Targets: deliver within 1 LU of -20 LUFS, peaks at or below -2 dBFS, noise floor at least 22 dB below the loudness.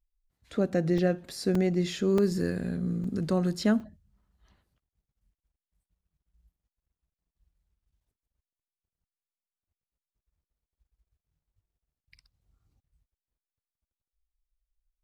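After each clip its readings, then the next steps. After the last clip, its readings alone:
dropouts 5; longest dropout 3.4 ms; loudness -28.0 LUFS; peak -13.5 dBFS; loudness target -20.0 LUFS
-> interpolate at 0.98/1.55/2.18/3.04/3.8, 3.4 ms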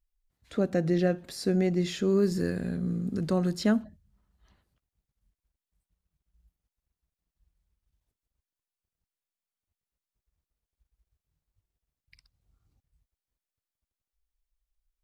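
dropouts 0; loudness -28.0 LUFS; peak -13.5 dBFS; loudness target -20.0 LUFS
-> gain +8 dB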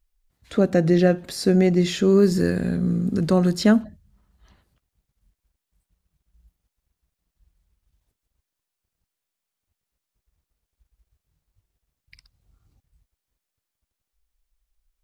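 loudness -20.0 LUFS; peak -5.5 dBFS; noise floor -84 dBFS

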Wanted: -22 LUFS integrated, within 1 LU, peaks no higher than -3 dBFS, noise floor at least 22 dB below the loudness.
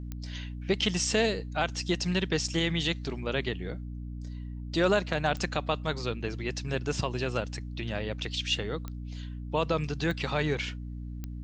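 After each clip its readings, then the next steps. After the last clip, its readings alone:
clicks 5; hum 60 Hz; harmonics up to 300 Hz; hum level -35 dBFS; loudness -31.0 LUFS; peak -10.0 dBFS; loudness target -22.0 LUFS
-> de-click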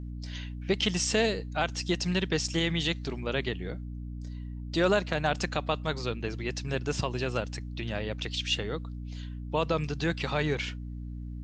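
clicks 0; hum 60 Hz; harmonics up to 300 Hz; hum level -35 dBFS
-> notches 60/120/180/240/300 Hz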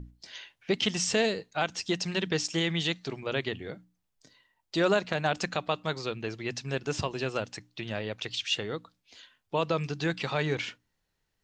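hum none; loudness -30.5 LUFS; peak -10.0 dBFS; loudness target -22.0 LUFS
-> gain +8.5 dB; limiter -3 dBFS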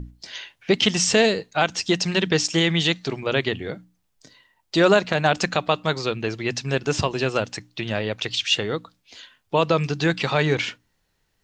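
loudness -22.0 LUFS; peak -3.0 dBFS; noise floor -71 dBFS

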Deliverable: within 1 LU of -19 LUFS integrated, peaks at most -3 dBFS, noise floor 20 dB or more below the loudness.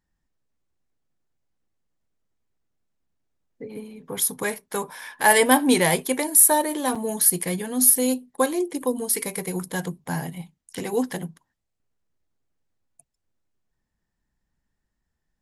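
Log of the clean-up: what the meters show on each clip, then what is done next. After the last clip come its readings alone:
dropouts 1; longest dropout 5.4 ms; loudness -21.0 LUFS; peak -2.0 dBFS; loudness target -19.0 LUFS
-> interpolate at 6.95, 5.4 ms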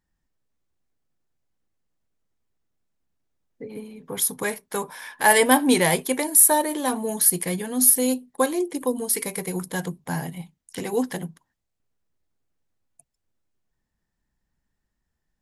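dropouts 0; loudness -21.0 LUFS; peak -2.0 dBFS; loudness target -19.0 LUFS
-> gain +2 dB; limiter -3 dBFS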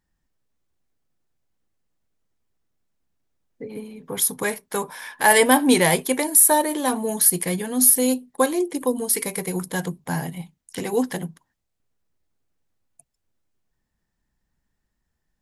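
loudness -19.5 LUFS; peak -3.0 dBFS; noise floor -78 dBFS

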